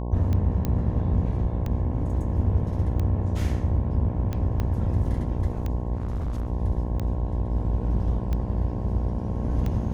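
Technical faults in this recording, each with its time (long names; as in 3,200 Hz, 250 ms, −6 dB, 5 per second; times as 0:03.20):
mains buzz 60 Hz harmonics 18 −29 dBFS
scratch tick 45 rpm −18 dBFS
0:00.65: click −14 dBFS
0:04.60: click −16 dBFS
0:05.97–0:06.47: clipping −24.5 dBFS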